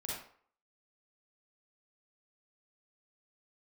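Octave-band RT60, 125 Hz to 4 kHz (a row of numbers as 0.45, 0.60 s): 0.40, 0.45, 0.50, 0.55, 0.45, 0.35 s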